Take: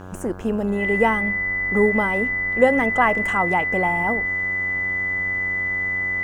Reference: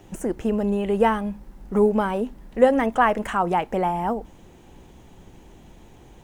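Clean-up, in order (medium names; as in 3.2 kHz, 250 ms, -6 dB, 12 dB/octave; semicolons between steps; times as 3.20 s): de-hum 92.9 Hz, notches 18; band-stop 2 kHz, Q 30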